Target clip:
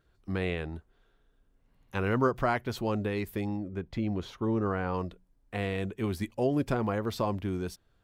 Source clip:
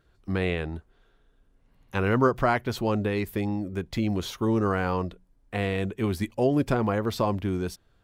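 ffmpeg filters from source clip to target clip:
ffmpeg -i in.wav -filter_complex "[0:a]asettb=1/sr,asplit=3[link_01][link_02][link_03];[link_01]atrim=end=3.574[link_04];[link_02]atrim=start=3.57:end=4.94,asetpts=PTS-STARTPTS,afade=type=in:duration=0.004:curve=qsin,afade=type=out:start_time=1.366:duration=0.004:curve=qsin,aemphasis=mode=reproduction:type=75kf[link_05];[link_03]atrim=start=4.936[link_06];[link_04][link_05]acrossfade=duration=0.004:curve1=hsin:curve2=qsin[link_07];[link_07][link_06]acrossfade=duration=0.004:curve1=qsin:curve2=hsin,volume=-4.5dB" out.wav

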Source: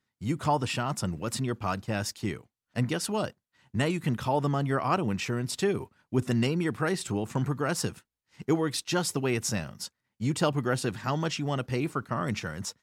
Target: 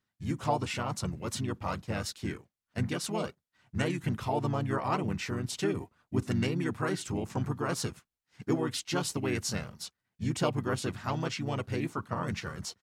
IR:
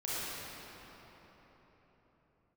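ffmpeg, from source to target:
-filter_complex "[0:a]asplit=2[link_01][link_02];[link_02]asetrate=35002,aresample=44100,atempo=1.25992,volume=-3dB[link_03];[link_01][link_03]amix=inputs=2:normalize=0,volume=-5dB"

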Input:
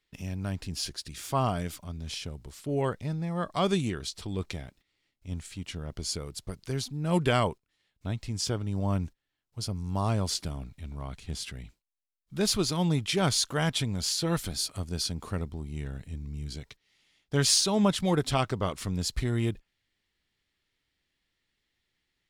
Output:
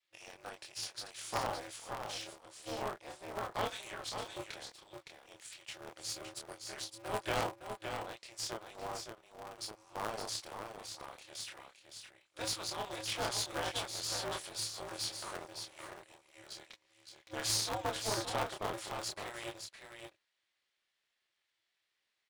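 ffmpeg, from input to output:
ffmpeg -i in.wav -filter_complex "[0:a]asettb=1/sr,asplit=3[link_01][link_02][link_03];[link_01]atrim=end=15.024[link_04];[link_02]atrim=start=15.02:end=15.44,asetpts=PTS-STARTPTS,afade=type=in:duration=0.004:curve=qsin,afade=type=out:start_time=0.416:duration=0.004:curve=qsin,aeval=exprs='val(0)+0.5*0.0168*sgn(val(0))':channel_layout=same[link_05];[link_03]atrim=start=15.436[link_06];[link_04][link_05]acrossfade=duration=0.004:curve1=hsin:curve2=qsin[link_07];[link_07][link_06]acrossfade=duration=0.004:curve1=qsin:curve2=hsin,adynamicequalizer=threshold=0.0112:dfrequency=760:dqfactor=1.6:tfrequency=760:tqfactor=1.6:attack=5:release=100:ratio=0.375:range=2:mode=boostabove:tftype=bell,afftfilt=real='re*between(b*sr/4096,430,11000)':imag='im*between(b*sr/4096,430,11000)':win_size=4096:overlap=0.75,asplit=2[link_08][link_09];[link_09]acompressor=threshold=-37dB:ratio=16,volume=3dB[link_10];[link_08][link_10]amix=inputs=2:normalize=0,flanger=delay=22.5:depth=6.3:speed=0.14,aeval=exprs='(tanh(7.08*val(0)+0.7)-tanh(0.7))/7.08':channel_layout=same,asplit=2[link_11][link_12];[link_12]aecho=0:1:564:0.473[link_13];[link_11][link_13]amix=inputs=2:normalize=0,aeval=exprs='val(0)*sgn(sin(2*PI*110*n/s))':channel_layout=same,volume=-4.5dB" out.wav

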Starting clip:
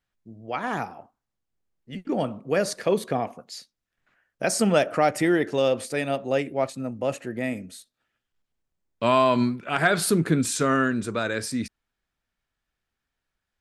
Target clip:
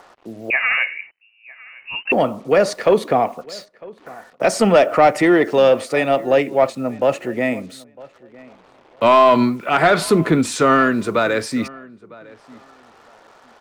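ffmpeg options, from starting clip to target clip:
ffmpeg -i in.wav -filter_complex "[0:a]bandreject=frequency=1600:width=8.8,acrossover=split=300|1400[link_01][link_02][link_03];[link_02]acompressor=mode=upward:threshold=-35dB:ratio=2.5[link_04];[link_01][link_04][link_03]amix=inputs=3:normalize=0,asplit=2[link_05][link_06];[link_06]highpass=frequency=720:poles=1,volume=15dB,asoftclip=type=tanh:threshold=-6.5dB[link_07];[link_05][link_07]amix=inputs=2:normalize=0,lowpass=frequency=1400:poles=1,volume=-6dB,acrusher=bits=8:mix=0:aa=0.5,asplit=2[link_08][link_09];[link_09]adelay=954,lowpass=frequency=2200:poles=1,volume=-22dB,asplit=2[link_10][link_11];[link_11]adelay=954,lowpass=frequency=2200:poles=1,volume=0.2[link_12];[link_10][link_12]amix=inputs=2:normalize=0[link_13];[link_08][link_13]amix=inputs=2:normalize=0,asettb=1/sr,asplit=3[link_14][link_15][link_16];[link_14]atrim=end=0.504[link_17];[link_15]atrim=start=0.5:end=2.12,asetpts=PTS-STARTPTS,afade=type=in:duration=0.004:curve=qsin,afade=type=out:start_time=1.616:duration=0.004:curve=qsin,lowpass=frequency=2600:width_type=q:width=0.5098,lowpass=frequency=2600:width_type=q:width=0.6013,lowpass=frequency=2600:width_type=q:width=0.9,lowpass=frequency=2600:width_type=q:width=2.563,afreqshift=-3000[link_18];[link_16]atrim=start=2.116[link_19];[link_17][link_18]acrossfade=duration=0.004:curve1=hsin:curve2=qsin[link_20];[link_20][link_19]acrossfade=duration=0.004:curve1=qsin:curve2=hsin,volume=5.5dB" out.wav

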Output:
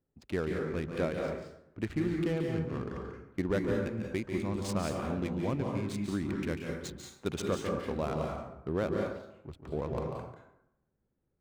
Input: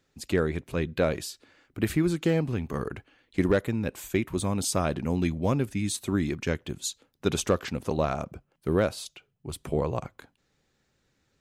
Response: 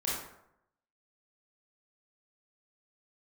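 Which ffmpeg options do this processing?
-filter_complex "[0:a]adynamicsmooth=sensitivity=7.5:basefreq=770,asplit=2[link_01][link_02];[1:a]atrim=start_sample=2205,adelay=143[link_03];[link_02][link_03]afir=irnorm=-1:irlink=0,volume=-6.5dB[link_04];[link_01][link_04]amix=inputs=2:normalize=0,volume=-8dB"

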